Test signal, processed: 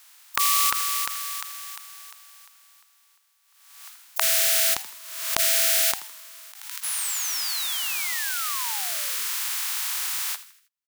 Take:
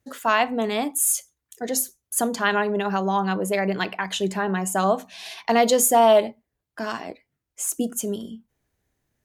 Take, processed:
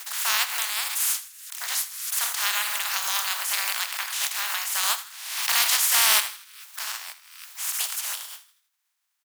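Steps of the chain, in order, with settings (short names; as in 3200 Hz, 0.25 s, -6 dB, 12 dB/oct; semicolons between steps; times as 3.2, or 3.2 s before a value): spectral contrast lowered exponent 0.2; HPF 900 Hz 24 dB/oct; soft clip -5 dBFS; frequency-shifting echo 80 ms, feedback 45%, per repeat +110 Hz, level -15 dB; backwards sustainer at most 56 dB/s; gain -2.5 dB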